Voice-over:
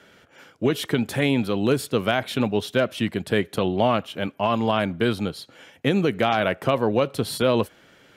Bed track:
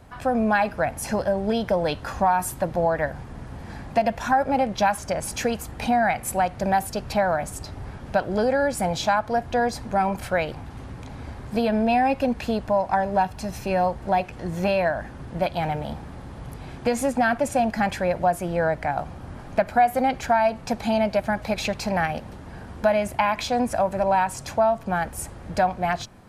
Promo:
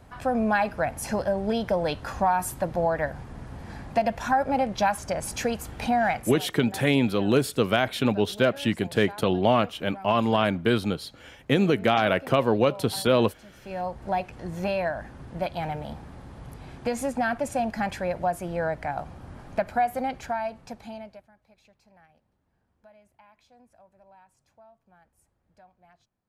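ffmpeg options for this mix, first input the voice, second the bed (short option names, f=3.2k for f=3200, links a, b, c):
-filter_complex "[0:a]adelay=5650,volume=-0.5dB[a];[1:a]volume=13dB,afade=t=out:st=6.17:d=0.22:silence=0.125893,afade=t=in:st=13.55:d=0.51:silence=0.16788,afade=t=out:st=19.69:d=1.6:silence=0.0334965[b];[a][b]amix=inputs=2:normalize=0"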